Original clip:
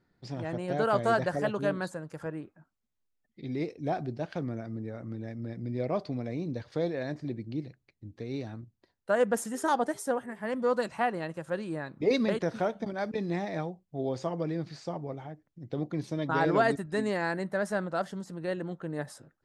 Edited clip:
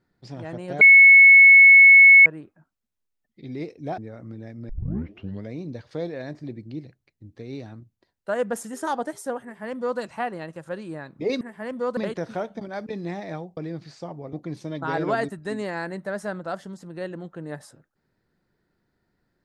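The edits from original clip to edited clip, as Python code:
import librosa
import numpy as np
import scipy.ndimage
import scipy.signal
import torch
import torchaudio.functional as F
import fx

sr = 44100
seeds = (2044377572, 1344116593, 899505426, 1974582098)

y = fx.edit(x, sr, fx.bleep(start_s=0.81, length_s=1.45, hz=2200.0, db=-7.0),
    fx.cut(start_s=3.98, length_s=0.81),
    fx.tape_start(start_s=5.5, length_s=0.82),
    fx.duplicate(start_s=10.24, length_s=0.56, to_s=12.22),
    fx.cut(start_s=13.82, length_s=0.6),
    fx.cut(start_s=15.18, length_s=0.62), tone=tone)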